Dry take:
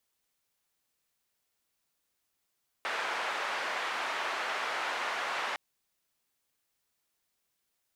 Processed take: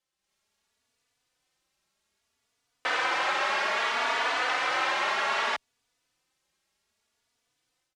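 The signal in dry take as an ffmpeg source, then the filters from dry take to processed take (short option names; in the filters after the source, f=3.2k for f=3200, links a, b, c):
-f lavfi -i "anoisesrc=c=white:d=2.71:r=44100:seed=1,highpass=f=700,lowpass=f=1700,volume=-16.3dB"
-filter_complex "[0:a]lowpass=7.4k,dynaudnorm=f=170:g=3:m=9.5dB,asplit=2[a][b];[b]adelay=3.4,afreqshift=0.63[c];[a][c]amix=inputs=2:normalize=1"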